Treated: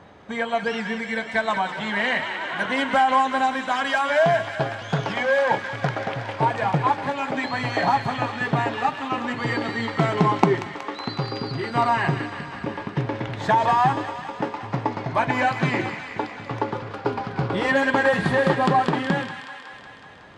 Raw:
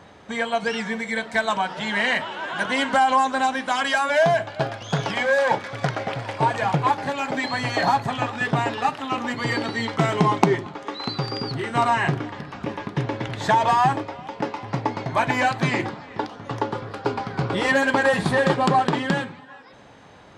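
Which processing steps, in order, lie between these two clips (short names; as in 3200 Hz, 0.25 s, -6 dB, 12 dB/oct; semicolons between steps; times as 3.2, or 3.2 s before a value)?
high shelf 4400 Hz -10.5 dB; thin delay 0.185 s, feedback 70%, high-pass 1600 Hz, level -6.5 dB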